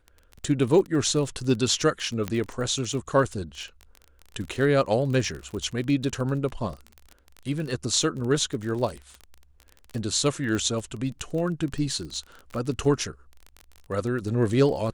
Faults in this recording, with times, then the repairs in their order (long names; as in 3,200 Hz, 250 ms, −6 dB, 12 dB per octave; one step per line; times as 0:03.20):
surface crackle 26 per second −31 dBFS
0:02.28: click −14 dBFS
0:10.55: click −18 dBFS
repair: click removal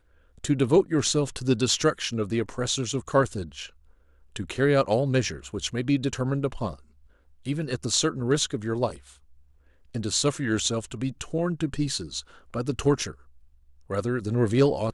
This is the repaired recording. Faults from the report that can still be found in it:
0:02.28: click